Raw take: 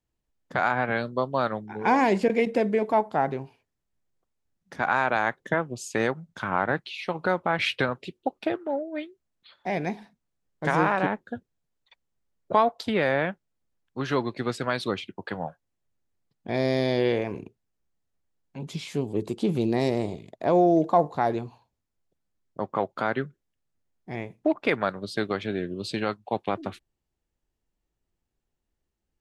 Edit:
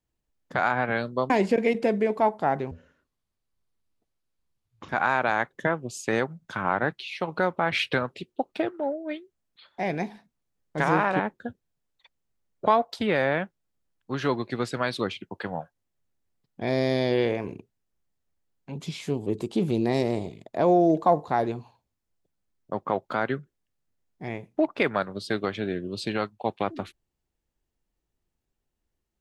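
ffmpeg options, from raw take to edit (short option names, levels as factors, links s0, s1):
-filter_complex "[0:a]asplit=4[s0][s1][s2][s3];[s0]atrim=end=1.302[s4];[s1]atrim=start=2.018:end=3.434[s5];[s2]atrim=start=3.43:end=4.76,asetpts=PTS-STARTPTS,asetrate=26901,aresample=44100,atrim=end_sample=96152,asetpts=PTS-STARTPTS[s6];[s3]atrim=start=4.756[s7];[s4][s5]acrossfade=d=0.004:c1=hsin:c2=hsin[s8];[s8][s6]acrossfade=d=0.004:c1=hsin:c2=hsin[s9];[s9][s7]acrossfade=d=0.004:c1=hsin:c2=hsin"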